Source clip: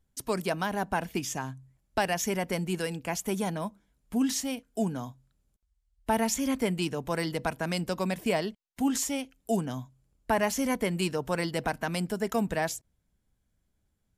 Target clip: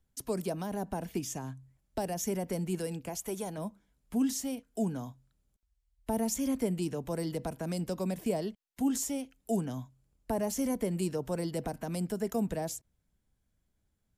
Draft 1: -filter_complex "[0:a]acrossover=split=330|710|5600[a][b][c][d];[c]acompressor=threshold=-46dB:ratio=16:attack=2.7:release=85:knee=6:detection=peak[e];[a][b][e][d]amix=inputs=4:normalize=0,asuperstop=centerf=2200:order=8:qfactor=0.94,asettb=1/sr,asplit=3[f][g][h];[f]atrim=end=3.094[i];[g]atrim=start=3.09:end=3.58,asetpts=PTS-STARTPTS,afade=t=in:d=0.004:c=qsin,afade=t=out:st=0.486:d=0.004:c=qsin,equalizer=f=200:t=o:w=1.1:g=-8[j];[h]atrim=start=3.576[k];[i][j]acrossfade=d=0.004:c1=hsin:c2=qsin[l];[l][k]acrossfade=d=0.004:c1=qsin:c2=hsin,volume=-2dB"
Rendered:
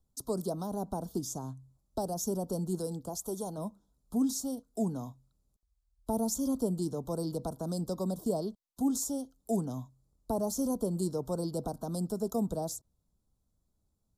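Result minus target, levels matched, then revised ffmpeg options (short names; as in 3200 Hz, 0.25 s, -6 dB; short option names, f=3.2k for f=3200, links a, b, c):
2000 Hz band -18.0 dB
-filter_complex "[0:a]acrossover=split=330|710|5600[a][b][c][d];[c]acompressor=threshold=-46dB:ratio=16:attack=2.7:release=85:knee=6:detection=peak[e];[a][b][e][d]amix=inputs=4:normalize=0,asettb=1/sr,asplit=3[f][g][h];[f]atrim=end=3.094[i];[g]atrim=start=3.09:end=3.58,asetpts=PTS-STARTPTS,afade=t=in:d=0.004:c=qsin,afade=t=out:st=0.486:d=0.004:c=qsin,equalizer=f=200:t=o:w=1.1:g=-8[j];[h]atrim=start=3.576[k];[i][j]acrossfade=d=0.004:c1=hsin:c2=qsin[l];[l][k]acrossfade=d=0.004:c1=qsin:c2=hsin,volume=-2dB"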